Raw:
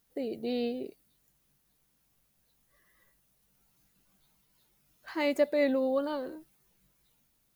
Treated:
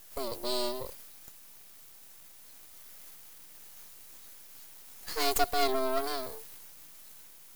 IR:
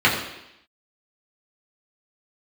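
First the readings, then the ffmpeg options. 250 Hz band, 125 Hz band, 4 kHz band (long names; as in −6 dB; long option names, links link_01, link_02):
−8.5 dB, can't be measured, +9.5 dB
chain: -af "afreqshift=130,aexciter=amount=4.4:drive=9.3:freq=4000,aeval=exprs='max(val(0),0)':channel_layout=same,volume=2.5dB"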